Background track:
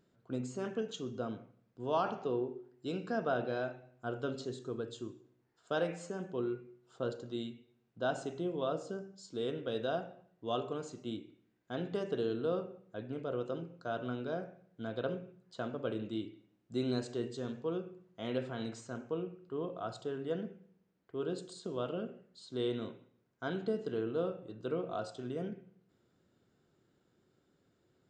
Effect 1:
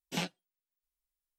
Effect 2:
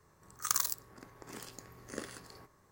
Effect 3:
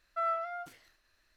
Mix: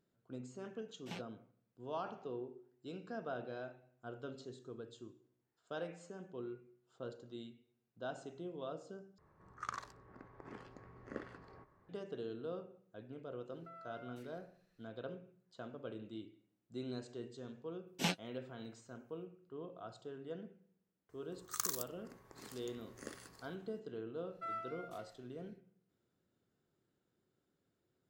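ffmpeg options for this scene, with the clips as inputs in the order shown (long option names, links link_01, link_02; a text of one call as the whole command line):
ffmpeg -i bed.wav -i cue0.wav -i cue1.wav -i cue2.wav -filter_complex "[1:a]asplit=2[link_01][link_02];[2:a]asplit=2[link_03][link_04];[3:a]asplit=2[link_05][link_06];[0:a]volume=-9.5dB[link_07];[link_01]aemphasis=mode=reproduction:type=cd[link_08];[link_03]lowpass=1800[link_09];[link_05]acompressor=threshold=-43dB:ratio=6:attack=3.2:release=140:knee=1:detection=peak[link_10];[link_02]tremolo=f=4.9:d=0.37[link_11];[link_06]equalizer=frequency=580:width=0.65:gain=-9.5[link_12];[link_07]asplit=2[link_13][link_14];[link_13]atrim=end=9.184[link_15];[link_09]atrim=end=2.71,asetpts=PTS-STARTPTS,volume=-2.5dB[link_16];[link_14]atrim=start=11.886[link_17];[link_08]atrim=end=1.38,asetpts=PTS-STARTPTS,volume=-12dB,afade=type=in:duration=0.004:curve=hsin,afade=type=out:start_time=1.376:duration=0.004:curve=hsin,adelay=940[link_18];[link_10]atrim=end=1.36,asetpts=PTS-STARTPTS,volume=-9.5dB,afade=type=in:duration=0.004:curve=hsin,afade=type=out:start_time=1.356:duration=0.004:curve=hsin,adelay=13500[link_19];[link_11]atrim=end=1.38,asetpts=PTS-STARTPTS,afade=type=in:duration=0.004:curve=hsin,afade=type=out:start_time=1.376:duration=0.004:curve=hsin,adelay=17870[link_20];[link_04]atrim=end=2.71,asetpts=PTS-STARTPTS,volume=-7dB,afade=type=in:duration=0.004:curve=hsin,afade=type=out:start_time=2.706:duration=0.004:curve=hsin,adelay=21090[link_21];[link_12]atrim=end=1.36,asetpts=PTS-STARTPTS,volume=-6.5dB,afade=type=in:duration=0.1,afade=type=out:start_time=1.26:duration=0.1,adelay=24250[link_22];[link_15][link_16]acrossfade=duration=0.004:curve1=hsin:curve2=hsin[link_23];[link_23][link_17]acrossfade=duration=0.004:curve1=hsin:curve2=hsin[link_24];[link_24][link_18][link_19][link_20][link_21][link_22]amix=inputs=6:normalize=0" out.wav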